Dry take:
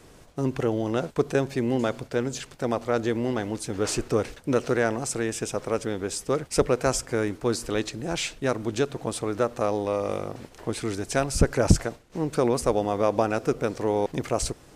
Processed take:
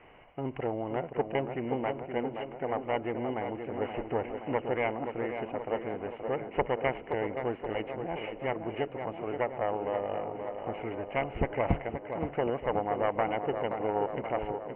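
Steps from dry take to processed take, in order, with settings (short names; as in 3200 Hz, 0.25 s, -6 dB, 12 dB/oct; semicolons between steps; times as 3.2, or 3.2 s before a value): self-modulated delay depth 0.45 ms; rippled Chebyshev low-pass 3000 Hz, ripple 9 dB; on a send: tape echo 0.525 s, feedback 73%, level -6 dB, low-pass 1800 Hz; on the sum: mismatched tape noise reduction encoder only; gain -1.5 dB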